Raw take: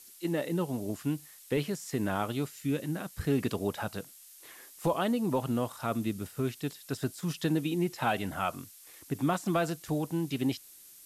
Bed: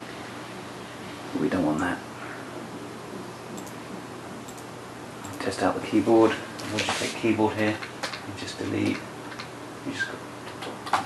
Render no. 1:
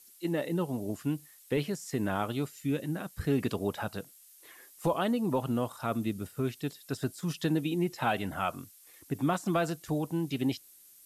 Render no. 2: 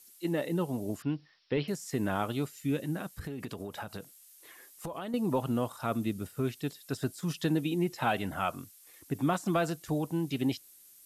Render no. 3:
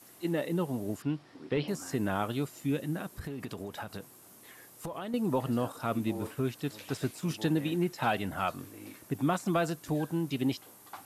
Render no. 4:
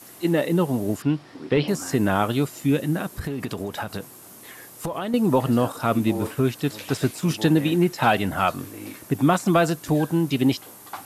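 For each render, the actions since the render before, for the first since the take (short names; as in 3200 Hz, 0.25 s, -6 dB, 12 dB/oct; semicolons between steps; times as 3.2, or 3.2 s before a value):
denoiser 6 dB, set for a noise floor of -54 dBFS
1.02–1.68 Chebyshev low-pass 5500 Hz, order 8; 3.09–5.14 compressor 12:1, threshold -34 dBFS
add bed -22 dB
gain +10 dB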